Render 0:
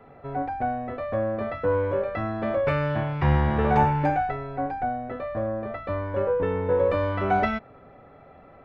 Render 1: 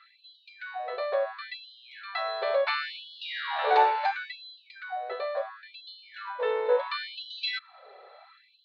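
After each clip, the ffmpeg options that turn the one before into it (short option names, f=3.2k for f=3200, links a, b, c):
-af "lowpass=f=4.1k:t=q:w=15,afftfilt=real='re*gte(b*sr/1024,350*pow(2900/350,0.5+0.5*sin(2*PI*0.72*pts/sr)))':imag='im*gte(b*sr/1024,350*pow(2900/350,0.5+0.5*sin(2*PI*0.72*pts/sr)))':win_size=1024:overlap=0.75"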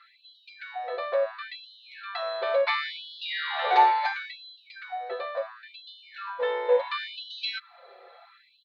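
-af "asubboost=boost=3:cutoff=250,aecho=1:1:5.8:0.9"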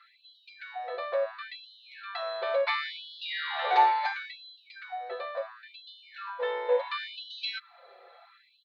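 -af "highpass=370,volume=-2.5dB"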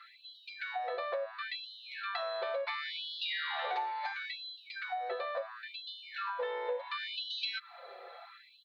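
-af "acompressor=threshold=-38dB:ratio=8,volume=4.5dB"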